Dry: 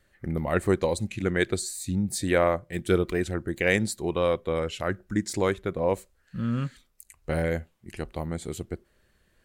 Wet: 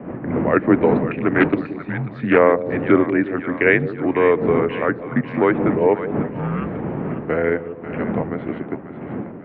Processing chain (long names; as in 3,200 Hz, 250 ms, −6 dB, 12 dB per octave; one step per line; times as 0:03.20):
wind on the microphone 230 Hz −30 dBFS
single-sideband voice off tune −71 Hz 250–2,500 Hz
on a send: echo with a time of its own for lows and highs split 600 Hz, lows 172 ms, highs 542 ms, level −11 dB
0:01.09–0:02.39: on the sum: highs frequency-modulated by the lows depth 0.22 ms
level +9 dB